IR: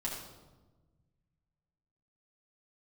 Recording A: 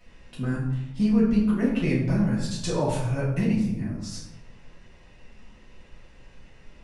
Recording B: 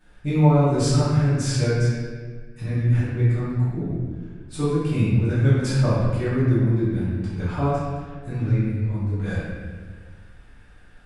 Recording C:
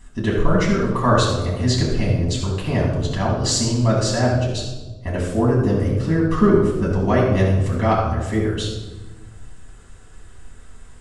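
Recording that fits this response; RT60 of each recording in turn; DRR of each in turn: C; 0.90 s, 1.6 s, 1.2 s; -8.5 dB, -13.0 dB, -5.0 dB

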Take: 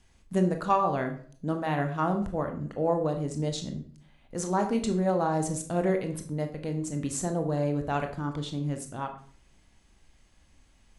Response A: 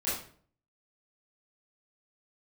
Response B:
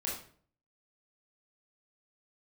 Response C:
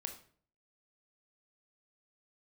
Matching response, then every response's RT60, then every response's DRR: C; 0.50 s, 0.50 s, 0.50 s; -12.0 dB, -5.0 dB, 5.0 dB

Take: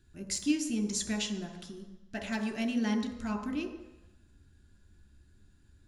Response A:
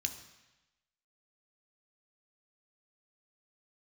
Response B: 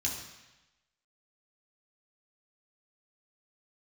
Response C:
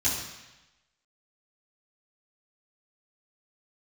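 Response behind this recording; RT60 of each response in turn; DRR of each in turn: A; 1.0 s, 1.0 s, 1.0 s; 5.0 dB, -4.0 dB, -13.0 dB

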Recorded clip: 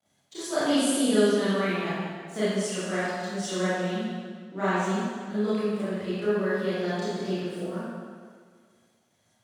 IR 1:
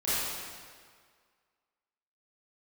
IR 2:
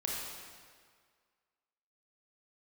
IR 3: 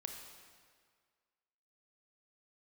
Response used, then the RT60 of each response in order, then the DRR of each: 1; 1.8 s, 1.8 s, 1.8 s; -13.5 dB, -3.5 dB, 3.0 dB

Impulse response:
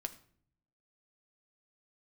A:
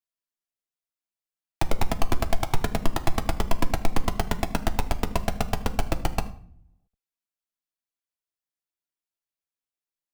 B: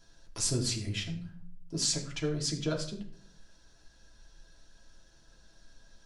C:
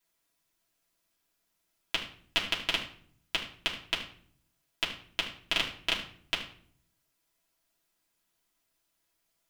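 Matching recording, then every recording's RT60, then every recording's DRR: A; 0.55 s, 0.55 s, 0.55 s; 6.5 dB, -0.5 dB, -5.5 dB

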